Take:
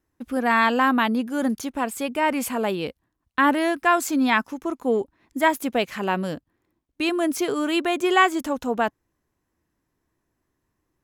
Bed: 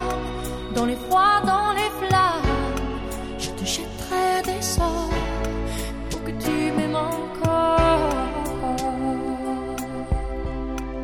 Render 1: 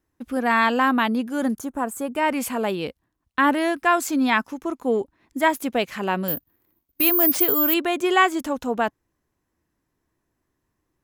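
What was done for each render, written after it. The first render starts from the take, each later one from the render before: 1.55–2.16 band shelf 3300 Hz -12 dB; 6.28–7.74 careless resampling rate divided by 3×, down none, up zero stuff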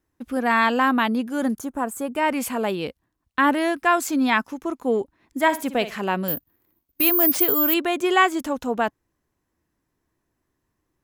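5.42–6.01 flutter echo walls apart 9.9 m, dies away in 0.27 s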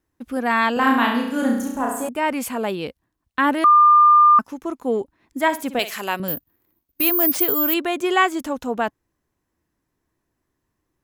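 0.73–2.09 flutter echo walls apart 5.8 m, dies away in 0.74 s; 3.64–4.39 bleep 1200 Hz -8.5 dBFS; 5.79–6.2 RIAA curve recording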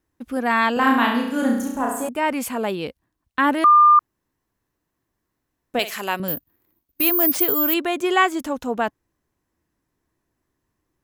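3.99–5.74 room tone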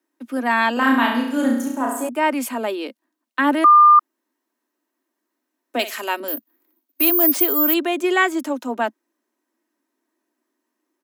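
steep high-pass 220 Hz 96 dB/oct; comb 3.2 ms, depth 39%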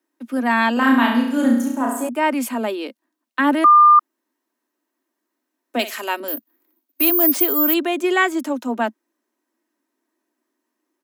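dynamic EQ 220 Hz, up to +6 dB, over -37 dBFS, Q 3.4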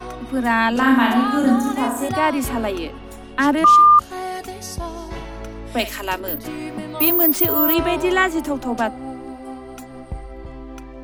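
add bed -7 dB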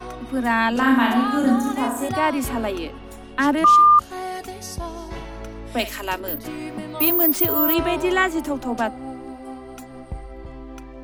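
gain -2 dB

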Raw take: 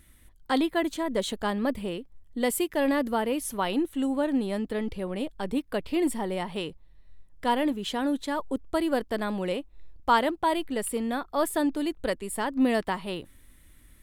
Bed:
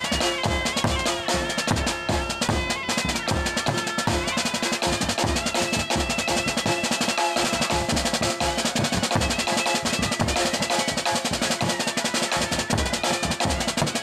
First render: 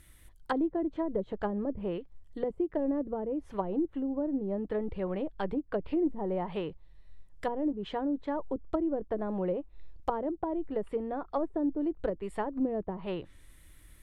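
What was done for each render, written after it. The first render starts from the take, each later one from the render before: treble ducked by the level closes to 400 Hz, closed at -23.5 dBFS; bell 240 Hz -13 dB 0.23 oct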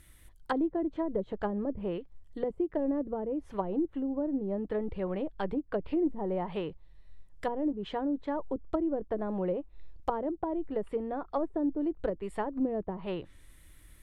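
nothing audible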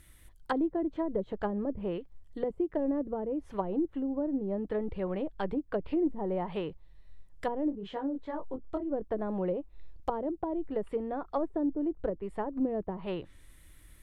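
7.69–8.89 detuned doubles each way 38 cents -> 24 cents; 9.49–10.66 dynamic EQ 1700 Hz, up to -4 dB, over -44 dBFS, Q 0.83; 11.63–12.57 high shelf 2000 Hz -11 dB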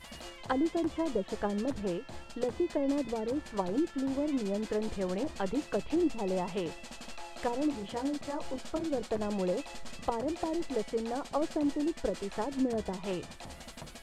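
add bed -23 dB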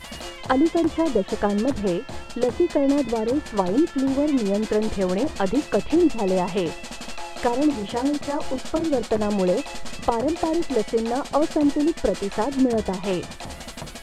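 gain +10.5 dB

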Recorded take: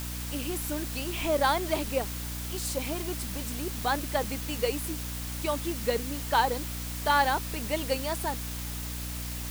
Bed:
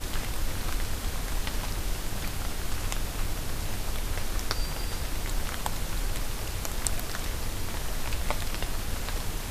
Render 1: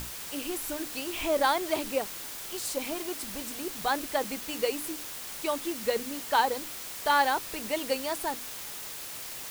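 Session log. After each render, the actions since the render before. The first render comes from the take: notches 60/120/180/240/300 Hz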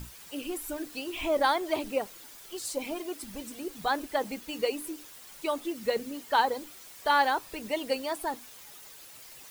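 denoiser 11 dB, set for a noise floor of -40 dBFS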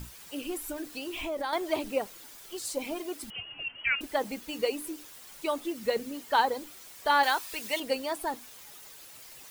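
0.71–1.53 compressor 3:1, threshold -32 dBFS; 3.3–4.01 inverted band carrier 3100 Hz; 7.23–7.8 tilt shelf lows -7.5 dB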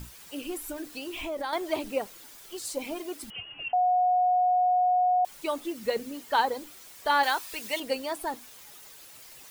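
3.73–5.25 bleep 727 Hz -20 dBFS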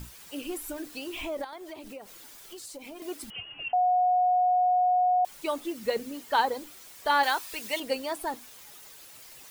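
1.44–3.02 compressor 5:1, threshold -40 dBFS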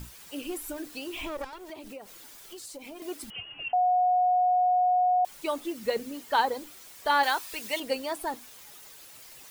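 1.26–1.7 minimum comb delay 2.1 ms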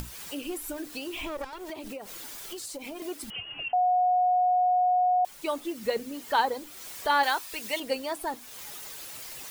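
upward compressor, threshold -32 dBFS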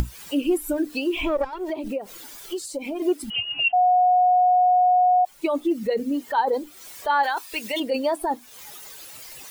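in parallel at +3 dB: negative-ratio compressor -32 dBFS, ratio -0.5; on the sum: spectral expander 1.5:1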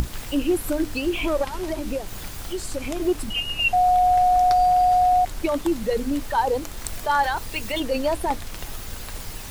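add bed -3.5 dB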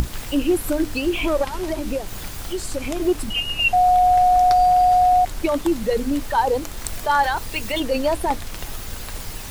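gain +2.5 dB

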